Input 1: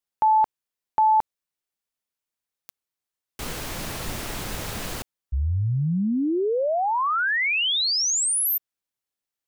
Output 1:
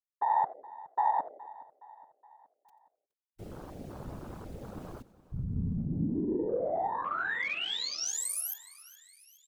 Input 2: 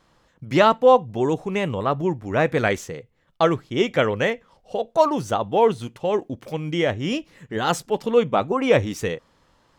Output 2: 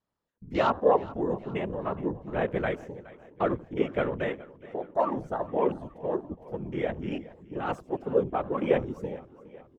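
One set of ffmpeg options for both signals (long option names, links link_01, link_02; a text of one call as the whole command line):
ffmpeg -i in.wav -filter_complex "[0:a]asplit=2[link_01][link_02];[link_02]asplit=4[link_03][link_04][link_05][link_06];[link_03]adelay=88,afreqshift=-140,volume=-18.5dB[link_07];[link_04]adelay=176,afreqshift=-280,volume=-25.6dB[link_08];[link_05]adelay=264,afreqshift=-420,volume=-32.8dB[link_09];[link_06]adelay=352,afreqshift=-560,volume=-39.9dB[link_10];[link_07][link_08][link_09][link_10]amix=inputs=4:normalize=0[link_11];[link_01][link_11]amix=inputs=2:normalize=0,afftfilt=real='hypot(re,im)*cos(2*PI*random(0))':imag='hypot(re,im)*sin(2*PI*random(1))':win_size=512:overlap=0.75,equalizer=frequency=290:width=0.34:gain=4,afwtdn=0.0158,asplit=2[link_12][link_13];[link_13]aecho=0:1:418|836|1254|1672:0.106|0.0561|0.0298|0.0158[link_14];[link_12][link_14]amix=inputs=2:normalize=0,volume=-5.5dB" out.wav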